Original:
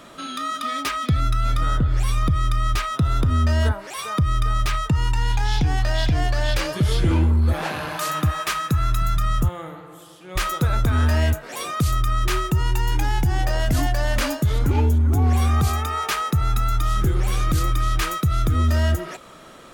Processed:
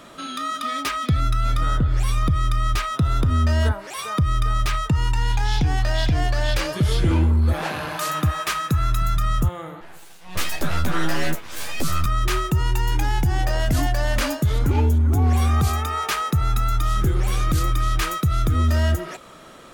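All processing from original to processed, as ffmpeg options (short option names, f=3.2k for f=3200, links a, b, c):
-filter_complex "[0:a]asettb=1/sr,asplit=3[a][b][c];[a]atrim=end=9.814[d];[b]atrim=start=9.81:end=12.06,asetpts=PTS-STARTPTS,afade=t=in:d=0.004:c=qsin,afade=t=out:st=2.246:d=0.004:c=qsin,bass=f=250:g=-4,treble=f=4k:g=1,aeval=exprs='abs(val(0))':c=same,asplit=2[e][f];[f]adelay=12,volume=-3dB[g];[e][g]amix=inputs=2:normalize=0,atrim=end_sample=99225[h];[c]atrim=start=12.056[i];[d][h]acrossfade=d=0.004:c1=hsin:c2=qsin[j];[j][i]acrossfade=d=0.004:c1=qsin:c2=hsin"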